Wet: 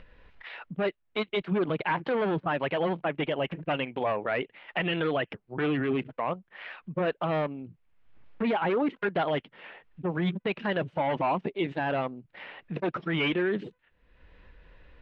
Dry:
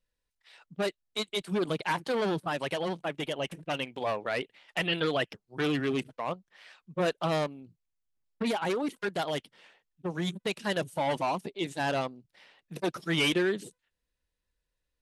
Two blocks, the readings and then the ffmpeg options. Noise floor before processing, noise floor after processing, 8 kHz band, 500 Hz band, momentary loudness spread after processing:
-85 dBFS, -71 dBFS, under -25 dB, +2.5 dB, 14 LU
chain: -af "lowpass=f=2.7k:w=0.5412,lowpass=f=2.7k:w=1.3066,alimiter=level_in=2.5dB:limit=-24dB:level=0:latency=1:release=62,volume=-2.5dB,acompressor=mode=upward:threshold=-40dB:ratio=2.5,volume=7dB"

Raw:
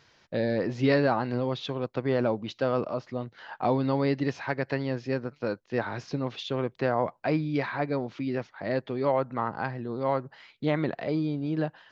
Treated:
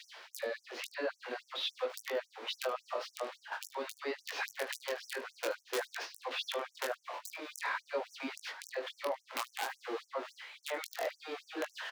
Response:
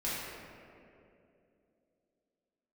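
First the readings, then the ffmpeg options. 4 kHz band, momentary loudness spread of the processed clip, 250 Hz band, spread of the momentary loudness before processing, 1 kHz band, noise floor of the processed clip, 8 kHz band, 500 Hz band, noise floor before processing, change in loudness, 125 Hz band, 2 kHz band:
+1.0 dB, 6 LU, -21.5 dB, 7 LU, -9.0 dB, -71 dBFS, n/a, -11.0 dB, -65 dBFS, -10.5 dB, under -40 dB, -4.0 dB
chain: -filter_complex "[0:a]aeval=exprs='val(0)+0.5*0.0178*sgn(val(0))':c=same,agate=range=-14dB:threshold=-35dB:ratio=16:detection=peak,acrossover=split=400 4900:gain=0.112 1 0.112[a][b][c];[a][b][c]amix=inputs=3:normalize=0,areverse,acompressor=mode=upward:threshold=-35dB:ratio=2.5,areverse,alimiter=limit=-22dB:level=0:latency=1:release=18,acompressor=threshold=-35dB:ratio=5,aeval=exprs='(mod(25.1*val(0)+1,2)-1)/25.1':c=same,flanger=delay=19:depth=6:speed=0.49,aecho=1:1:18|75:0.251|0.133,afftfilt=real='re*gte(b*sr/1024,240*pow(5700/240,0.5+0.5*sin(2*PI*3.6*pts/sr)))':imag='im*gte(b*sr/1024,240*pow(5700/240,0.5+0.5*sin(2*PI*3.6*pts/sr)))':win_size=1024:overlap=0.75,volume=6dB"

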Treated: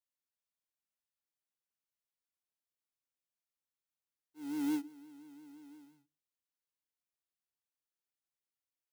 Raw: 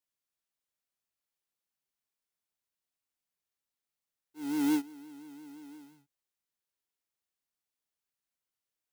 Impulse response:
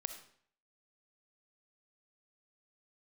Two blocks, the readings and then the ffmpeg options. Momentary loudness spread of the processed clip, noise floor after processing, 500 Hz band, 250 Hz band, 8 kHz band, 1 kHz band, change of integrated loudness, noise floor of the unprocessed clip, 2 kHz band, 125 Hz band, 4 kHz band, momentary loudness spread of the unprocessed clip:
20 LU, under -85 dBFS, -7.0 dB, -5.5 dB, -8.0 dB, -8.0 dB, -6.5 dB, under -85 dBFS, -8.0 dB, -7.5 dB, -8.0 dB, 20 LU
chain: -filter_complex "[0:a]asplit=2[a][b];[b]asuperpass=centerf=290:order=20:qfactor=0.69[c];[1:a]atrim=start_sample=2205,afade=t=out:st=0.24:d=0.01,atrim=end_sample=11025[d];[c][d]afir=irnorm=-1:irlink=0,volume=-9dB[e];[a][e]amix=inputs=2:normalize=0,volume=-8dB"

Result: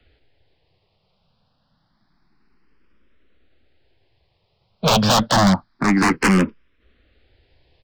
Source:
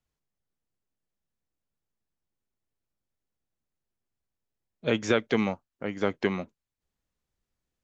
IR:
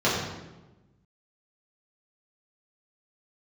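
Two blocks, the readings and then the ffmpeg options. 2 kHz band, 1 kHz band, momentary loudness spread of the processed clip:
+11.0 dB, +18.0 dB, 5 LU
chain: -filter_complex "[0:a]acrossover=split=100|540|2000[a][b][c][d];[c]aeval=exprs='(mod(39.8*val(0)+1,2)-1)/39.8':c=same[e];[a][b][e][d]amix=inputs=4:normalize=0,aresample=11025,aresample=44100,aeval=exprs='0.224*(cos(1*acos(clip(val(0)/0.224,-1,1)))-cos(1*PI/2))+0.1*(cos(7*acos(clip(val(0)/0.224,-1,1)))-cos(7*PI/2))':c=same,asoftclip=type=hard:threshold=-28.5dB,alimiter=level_in=31.5dB:limit=-1dB:release=50:level=0:latency=1,asplit=2[f][g];[g]afreqshift=0.28[h];[f][h]amix=inputs=2:normalize=1,volume=-9dB"

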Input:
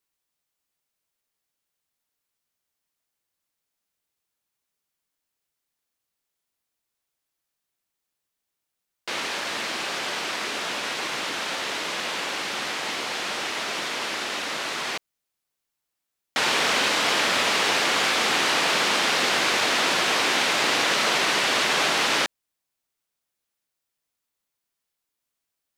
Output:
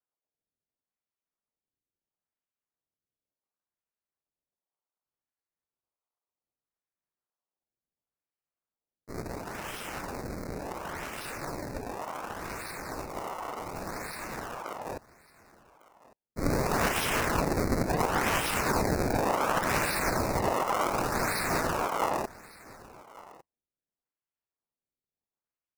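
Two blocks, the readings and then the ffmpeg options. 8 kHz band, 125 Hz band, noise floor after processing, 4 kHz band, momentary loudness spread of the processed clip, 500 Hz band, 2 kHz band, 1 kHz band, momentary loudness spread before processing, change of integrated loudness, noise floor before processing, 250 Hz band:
-9.5 dB, +9.5 dB, under -85 dBFS, -17.5 dB, 14 LU, -2.0 dB, -11.0 dB, -4.0 dB, 7 LU, -8.0 dB, -83 dBFS, +1.0 dB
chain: -filter_complex "[0:a]bandreject=f=198.9:t=h:w=4,bandreject=f=397.8:t=h:w=4,bandreject=f=596.7:t=h:w=4,bandreject=f=795.6:t=h:w=4,bandreject=f=994.5:t=h:w=4,bandreject=f=1.1934k:t=h:w=4,bandreject=f=1.3923k:t=h:w=4,bandreject=f=1.5912k:t=h:w=4,acrossover=split=800[a][b];[b]aexciter=amount=7.3:drive=6.9:freq=2.5k[c];[a][c]amix=inputs=2:normalize=0,alimiter=limit=-1.5dB:level=0:latency=1:release=69,dynaudnorm=f=730:g=17:m=11.5dB,agate=range=-33dB:threshold=-2dB:ratio=3:detection=peak,acrusher=samples=32:mix=1:aa=0.000001:lfo=1:lforange=51.2:lforate=0.69,asuperstop=centerf=3100:order=8:qfactor=1.7,aecho=1:1:1153:0.0944,aeval=exprs='val(0)*sin(2*PI*520*n/s+520*0.75/0.82*sin(2*PI*0.82*n/s))':c=same,volume=-4.5dB"

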